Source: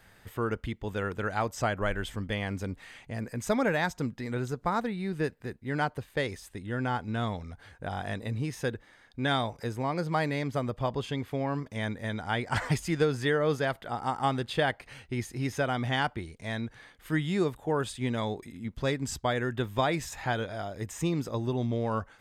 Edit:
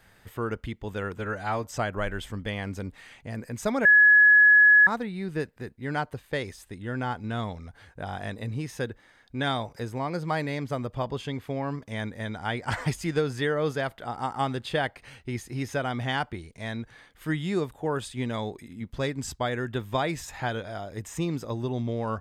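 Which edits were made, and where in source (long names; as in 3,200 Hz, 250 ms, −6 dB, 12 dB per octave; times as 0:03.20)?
0:01.17–0:01.49: time-stretch 1.5×
0:03.69–0:04.71: beep over 1,690 Hz −12.5 dBFS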